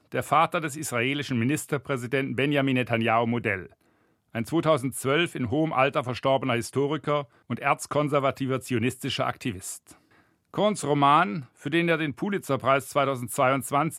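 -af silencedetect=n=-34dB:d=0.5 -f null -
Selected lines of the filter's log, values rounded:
silence_start: 3.66
silence_end: 4.35 | silence_duration: 0.69
silence_start: 9.77
silence_end: 10.54 | silence_duration: 0.77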